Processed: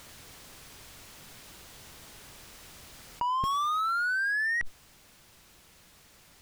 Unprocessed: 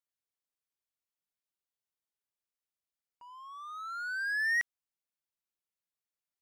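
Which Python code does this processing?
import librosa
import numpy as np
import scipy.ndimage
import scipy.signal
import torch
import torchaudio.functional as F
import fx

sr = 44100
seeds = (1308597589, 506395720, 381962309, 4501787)

p1 = fx.schmitt(x, sr, flips_db=-43.5)
p2 = x + (p1 * 10.0 ** (-9.0 / 20.0))
p3 = fx.high_shelf(p2, sr, hz=9200.0, db=-9.5)
p4 = fx.rider(p3, sr, range_db=4, speed_s=0.5)
p5 = fx.low_shelf(p4, sr, hz=200.0, db=11.5)
p6 = fx.env_flatten(p5, sr, amount_pct=100)
y = p6 * 10.0 ** (2.5 / 20.0)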